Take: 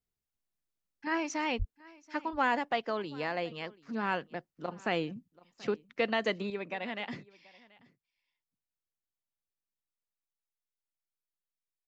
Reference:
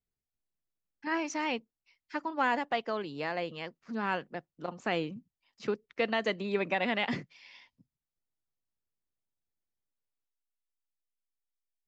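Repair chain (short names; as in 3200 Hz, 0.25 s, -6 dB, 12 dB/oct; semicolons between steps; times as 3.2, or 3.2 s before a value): 1.58–1.7 HPF 140 Hz 24 dB/oct; inverse comb 0.732 s -23 dB; gain 0 dB, from 6.5 s +7.5 dB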